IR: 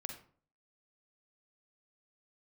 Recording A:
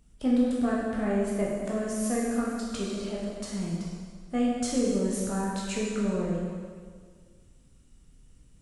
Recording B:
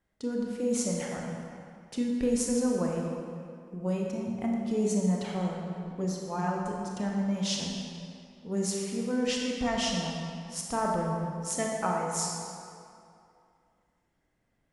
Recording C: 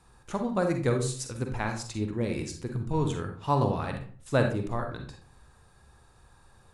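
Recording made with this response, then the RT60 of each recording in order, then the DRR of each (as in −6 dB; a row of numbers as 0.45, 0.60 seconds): C; 1.8, 2.5, 0.50 seconds; −5.5, −1.5, 4.0 decibels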